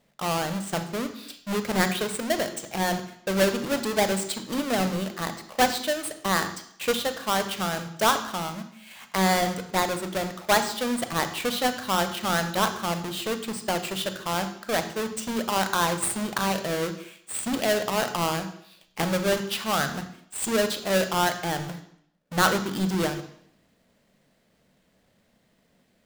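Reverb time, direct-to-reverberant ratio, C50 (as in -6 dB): 0.65 s, 8.5 dB, 10.5 dB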